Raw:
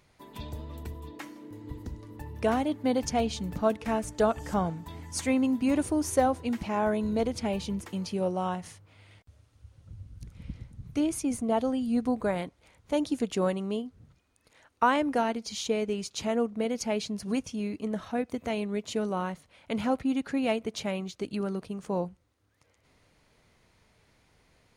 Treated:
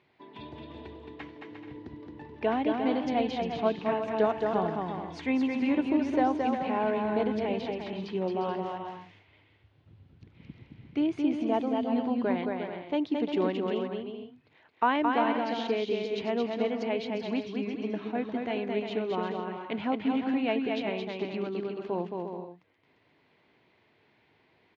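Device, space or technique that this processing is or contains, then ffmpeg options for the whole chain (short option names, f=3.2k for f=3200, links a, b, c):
kitchen radio: -af "highpass=180,equalizer=f=200:t=q:w=4:g=-4,equalizer=f=370:t=q:w=4:g=4,equalizer=f=530:t=q:w=4:g=-6,equalizer=f=1.3k:t=q:w=4:g=-6,lowpass=f=3.5k:w=0.5412,lowpass=f=3.5k:w=1.3066,aecho=1:1:220|352|431.2|478.7|507.2:0.631|0.398|0.251|0.158|0.1"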